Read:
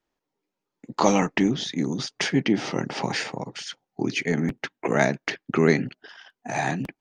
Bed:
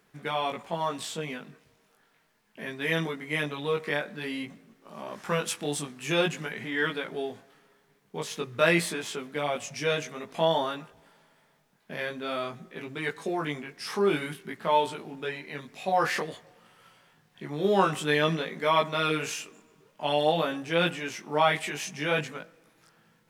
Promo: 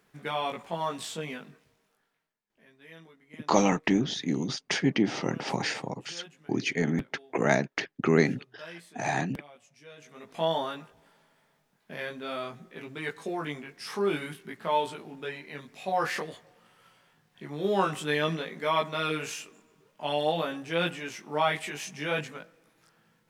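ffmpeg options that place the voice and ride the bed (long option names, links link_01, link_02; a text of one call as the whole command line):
ffmpeg -i stem1.wav -i stem2.wav -filter_complex "[0:a]adelay=2500,volume=-3dB[link_01];[1:a]volume=18dB,afade=type=out:start_time=1.4:duration=0.98:silence=0.0891251,afade=type=in:start_time=9.96:duration=0.49:silence=0.105925[link_02];[link_01][link_02]amix=inputs=2:normalize=0" out.wav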